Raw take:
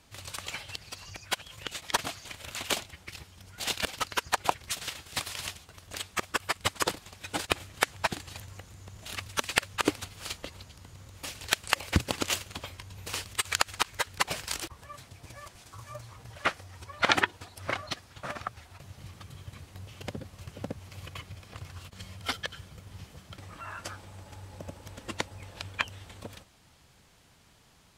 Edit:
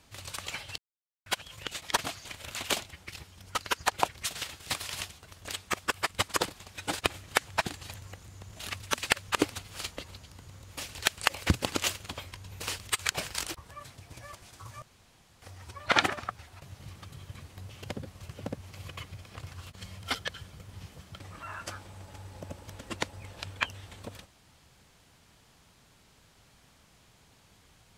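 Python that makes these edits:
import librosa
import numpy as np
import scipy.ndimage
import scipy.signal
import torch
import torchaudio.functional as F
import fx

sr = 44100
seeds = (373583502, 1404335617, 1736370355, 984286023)

y = fx.edit(x, sr, fx.silence(start_s=0.78, length_s=0.48),
    fx.cut(start_s=3.55, length_s=0.46),
    fx.cut(start_s=13.56, length_s=0.67),
    fx.room_tone_fill(start_s=15.95, length_s=0.6),
    fx.cut(start_s=17.23, length_s=1.05), tone=tone)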